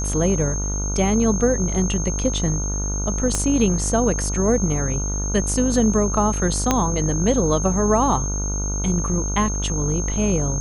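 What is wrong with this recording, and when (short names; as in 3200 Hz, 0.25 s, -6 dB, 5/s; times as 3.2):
buzz 50 Hz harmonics 30 -25 dBFS
tone 6400 Hz -27 dBFS
3.35 pop -8 dBFS
6.71 pop -3 dBFS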